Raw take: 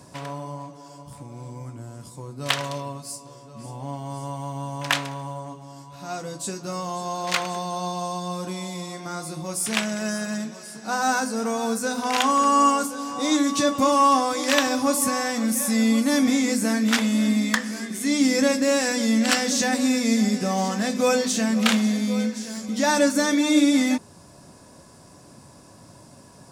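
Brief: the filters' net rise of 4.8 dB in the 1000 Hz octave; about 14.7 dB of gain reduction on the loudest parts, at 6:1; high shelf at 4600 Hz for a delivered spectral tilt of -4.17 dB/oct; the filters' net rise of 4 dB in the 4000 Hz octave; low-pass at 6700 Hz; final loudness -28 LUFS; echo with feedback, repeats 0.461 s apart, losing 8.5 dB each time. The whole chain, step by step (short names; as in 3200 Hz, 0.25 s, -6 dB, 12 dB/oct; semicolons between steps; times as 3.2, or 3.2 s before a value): LPF 6700 Hz; bell 1000 Hz +5.5 dB; bell 4000 Hz +8.5 dB; high shelf 4600 Hz -6 dB; compressor 6:1, threshold -26 dBFS; feedback echo 0.461 s, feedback 38%, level -8.5 dB; gain +1.5 dB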